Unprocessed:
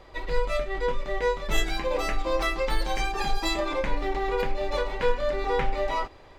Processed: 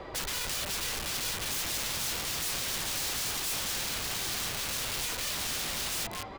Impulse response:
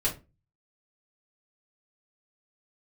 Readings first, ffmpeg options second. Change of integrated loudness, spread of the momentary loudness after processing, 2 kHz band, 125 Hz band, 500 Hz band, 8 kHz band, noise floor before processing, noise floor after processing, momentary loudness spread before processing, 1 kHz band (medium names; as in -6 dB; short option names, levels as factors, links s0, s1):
-2.5 dB, 1 LU, -4.5 dB, -6.5 dB, -17.5 dB, +12.5 dB, -49 dBFS, -41 dBFS, 3 LU, -11.0 dB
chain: -filter_complex "[0:a]equalizer=f=140:w=0.34:g=12,acompressor=threshold=0.0501:ratio=2,asplit=5[s0][s1][s2][s3][s4];[s1]adelay=213,afreqshift=88,volume=0.224[s5];[s2]adelay=426,afreqshift=176,volume=0.0832[s6];[s3]adelay=639,afreqshift=264,volume=0.0305[s7];[s4]adelay=852,afreqshift=352,volume=0.0114[s8];[s0][s5][s6][s7][s8]amix=inputs=5:normalize=0,asplit=2[s9][s10];[s10]highpass=f=720:p=1,volume=5.01,asoftclip=type=tanh:threshold=0.211[s11];[s9][s11]amix=inputs=2:normalize=0,lowpass=f=2700:p=1,volume=0.501,aeval=exprs='(mod(21.1*val(0)+1,2)-1)/21.1':c=same,acrossover=split=150|3000[s12][s13][s14];[s13]acompressor=threshold=0.0112:ratio=6[s15];[s12][s15][s14]amix=inputs=3:normalize=0"